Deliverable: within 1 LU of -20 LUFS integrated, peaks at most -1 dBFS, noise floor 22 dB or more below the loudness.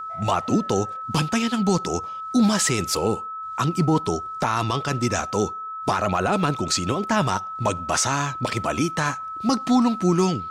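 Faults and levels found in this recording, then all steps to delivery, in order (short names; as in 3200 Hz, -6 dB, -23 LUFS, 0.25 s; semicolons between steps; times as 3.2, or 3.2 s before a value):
steady tone 1300 Hz; tone level -30 dBFS; loudness -23.0 LUFS; peak -9.5 dBFS; loudness target -20.0 LUFS
-> notch 1300 Hz, Q 30; gain +3 dB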